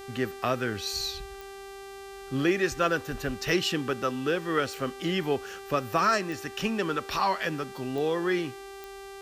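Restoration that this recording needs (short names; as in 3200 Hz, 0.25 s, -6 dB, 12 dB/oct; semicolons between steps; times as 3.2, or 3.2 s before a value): de-click; de-hum 392.9 Hz, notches 36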